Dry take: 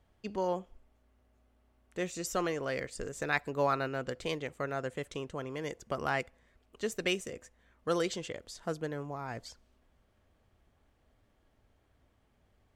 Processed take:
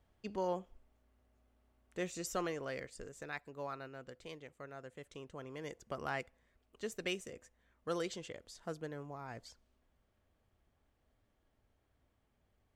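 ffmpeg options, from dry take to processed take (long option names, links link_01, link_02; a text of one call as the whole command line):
ffmpeg -i in.wav -af "volume=3dB,afade=type=out:start_time=2.17:duration=1.24:silence=0.316228,afade=type=in:start_time=4.9:duration=0.75:silence=0.446684" out.wav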